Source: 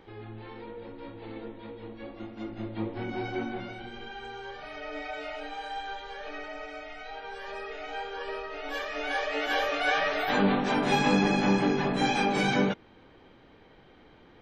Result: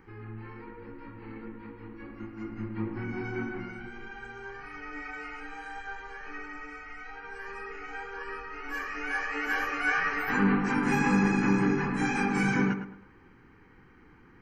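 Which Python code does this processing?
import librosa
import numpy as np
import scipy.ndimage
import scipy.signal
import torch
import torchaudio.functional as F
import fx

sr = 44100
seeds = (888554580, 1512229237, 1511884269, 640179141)

y = fx.echo_tape(x, sr, ms=107, feedback_pct=37, wet_db=-7.0, lp_hz=2000.0, drive_db=14.0, wow_cents=15)
y = np.clip(y, -10.0 ** (-13.5 / 20.0), 10.0 ** (-13.5 / 20.0))
y = fx.fixed_phaser(y, sr, hz=1500.0, stages=4)
y = y * librosa.db_to_amplitude(2.0)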